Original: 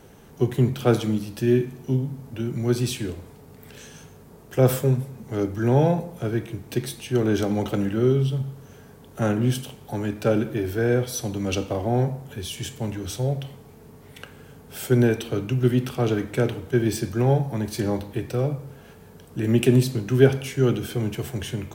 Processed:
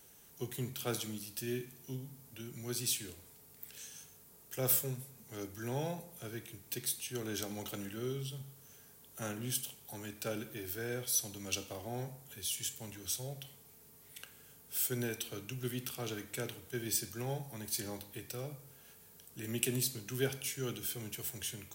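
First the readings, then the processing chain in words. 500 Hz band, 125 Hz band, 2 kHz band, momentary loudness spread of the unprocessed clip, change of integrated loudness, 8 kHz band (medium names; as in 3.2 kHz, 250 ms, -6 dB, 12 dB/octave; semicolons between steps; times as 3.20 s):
-18.5 dB, -20.0 dB, -11.5 dB, 13 LU, -14.5 dB, -0.5 dB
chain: pre-emphasis filter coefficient 0.9; companded quantiser 8-bit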